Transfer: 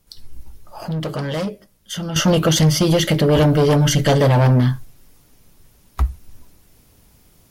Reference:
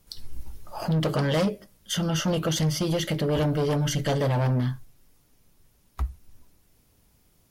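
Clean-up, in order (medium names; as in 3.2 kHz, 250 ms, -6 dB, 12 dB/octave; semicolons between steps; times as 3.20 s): gain correction -10 dB, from 2.16 s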